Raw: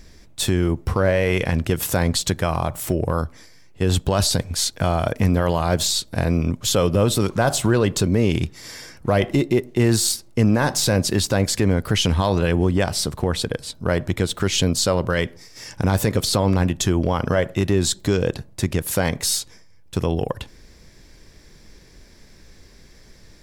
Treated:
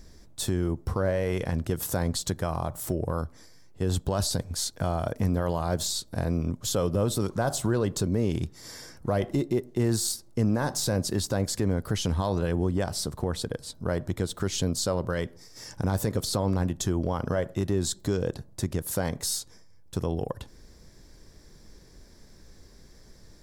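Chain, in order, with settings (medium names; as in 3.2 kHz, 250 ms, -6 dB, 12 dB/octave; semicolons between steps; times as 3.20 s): in parallel at -2.5 dB: compression, threshold -31 dBFS, peak gain reduction 16.5 dB; on the sum: peaking EQ 2.5 kHz -9 dB 1 oct; trim -8.5 dB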